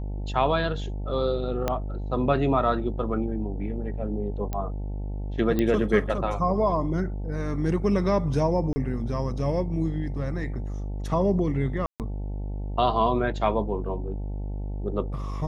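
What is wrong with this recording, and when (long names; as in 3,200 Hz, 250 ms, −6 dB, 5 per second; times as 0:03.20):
mains buzz 50 Hz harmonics 18 −31 dBFS
0:01.68: click −11 dBFS
0:04.53: click −17 dBFS
0:05.59: click −13 dBFS
0:08.73–0:08.76: drop-out 30 ms
0:11.86–0:12.00: drop-out 138 ms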